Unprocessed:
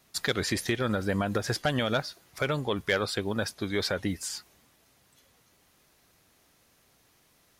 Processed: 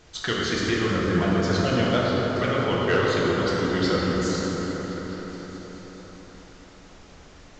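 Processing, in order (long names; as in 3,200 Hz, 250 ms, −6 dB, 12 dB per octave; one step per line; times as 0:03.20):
pitch shifter swept by a sawtooth −3 semitones, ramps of 174 ms
echo whose low-pass opens from repeat to repeat 214 ms, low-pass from 400 Hz, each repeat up 1 octave, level −6 dB
background noise pink −55 dBFS
dense smooth reverb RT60 4.4 s, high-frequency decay 0.5×, DRR −5 dB
A-law companding 128 kbit/s 16,000 Hz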